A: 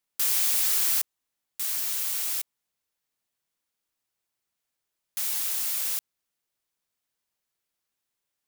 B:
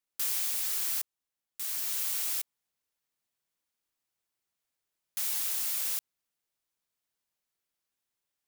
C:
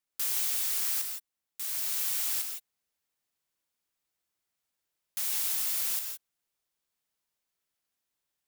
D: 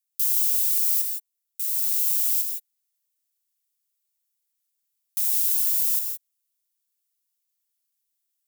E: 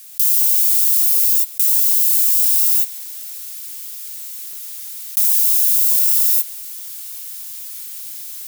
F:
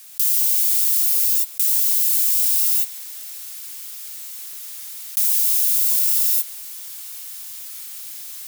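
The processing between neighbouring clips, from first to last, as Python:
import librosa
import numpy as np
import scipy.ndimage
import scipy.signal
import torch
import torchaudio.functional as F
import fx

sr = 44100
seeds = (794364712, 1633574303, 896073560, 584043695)

y1 = fx.rider(x, sr, range_db=10, speed_s=0.5)
y1 = y1 * librosa.db_to_amplitude(-4.0)
y2 = fx.rev_gated(y1, sr, seeds[0], gate_ms=190, shape='rising', drr_db=4.5)
y3 = np.diff(y2, prepend=0.0)
y3 = y3 * librosa.db_to_amplitude(3.5)
y4 = fx.highpass(y3, sr, hz=1300.0, slope=6)
y4 = fx.rev_gated(y4, sr, seeds[1], gate_ms=260, shape='rising', drr_db=-3.5)
y4 = fx.env_flatten(y4, sr, amount_pct=100)
y4 = y4 * librosa.db_to_amplitude(1.5)
y5 = fx.tilt_eq(y4, sr, slope=-1.5)
y5 = y5 * librosa.db_to_amplitude(2.5)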